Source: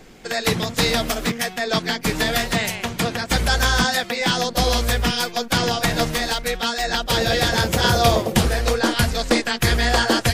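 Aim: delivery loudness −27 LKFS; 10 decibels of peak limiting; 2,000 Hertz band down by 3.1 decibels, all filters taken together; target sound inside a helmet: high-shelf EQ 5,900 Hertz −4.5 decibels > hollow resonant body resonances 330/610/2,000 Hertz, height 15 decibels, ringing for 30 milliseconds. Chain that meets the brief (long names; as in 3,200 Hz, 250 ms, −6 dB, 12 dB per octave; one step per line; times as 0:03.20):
parametric band 2,000 Hz −3.5 dB
brickwall limiter −14 dBFS
high-shelf EQ 5,900 Hz −4.5 dB
hollow resonant body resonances 330/610/2,000 Hz, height 15 dB, ringing for 30 ms
level −8 dB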